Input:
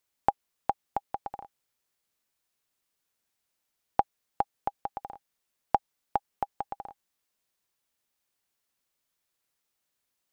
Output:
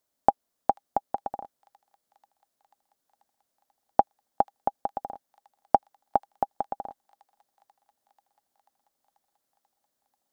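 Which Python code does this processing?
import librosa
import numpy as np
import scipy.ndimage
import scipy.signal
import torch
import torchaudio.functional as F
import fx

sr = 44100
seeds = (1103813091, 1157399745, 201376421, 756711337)

y = fx.graphic_eq_15(x, sr, hz=(250, 630, 2500), db=(8, 9, -7))
y = fx.echo_wet_highpass(y, sr, ms=488, feedback_pct=73, hz=3000.0, wet_db=-15.0)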